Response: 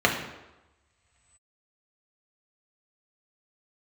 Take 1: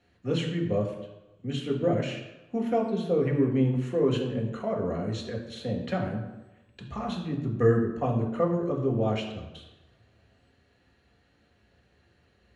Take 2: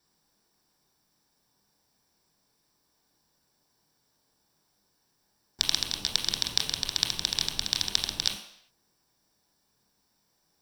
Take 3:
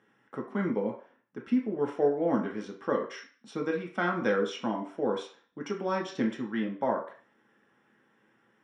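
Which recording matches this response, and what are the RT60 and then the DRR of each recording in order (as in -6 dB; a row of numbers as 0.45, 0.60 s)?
1; 1.1 s, not exponential, 0.45 s; -0.5, 2.5, 0.0 dB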